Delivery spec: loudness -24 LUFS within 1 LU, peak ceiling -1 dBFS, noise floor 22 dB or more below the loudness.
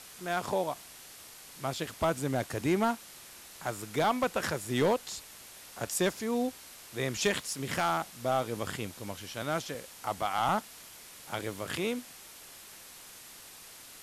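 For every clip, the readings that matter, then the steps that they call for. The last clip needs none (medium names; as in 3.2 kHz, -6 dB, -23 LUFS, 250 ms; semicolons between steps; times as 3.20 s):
clipped samples 0.3%; clipping level -20.0 dBFS; noise floor -50 dBFS; noise floor target -55 dBFS; loudness -32.5 LUFS; peak level -20.0 dBFS; loudness target -24.0 LUFS
-> clip repair -20 dBFS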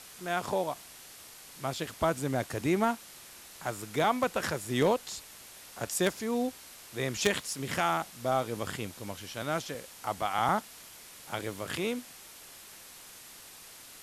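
clipped samples 0.0%; noise floor -50 dBFS; noise floor target -54 dBFS
-> noise print and reduce 6 dB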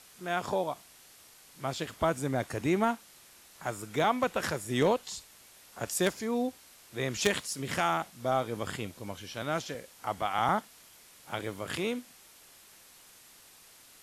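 noise floor -56 dBFS; loudness -32.0 LUFS; peak level -11.0 dBFS; loudness target -24.0 LUFS
-> trim +8 dB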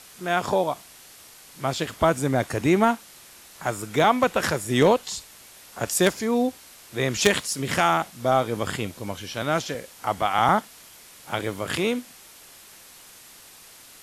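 loudness -24.0 LUFS; peak level -3.0 dBFS; noise floor -48 dBFS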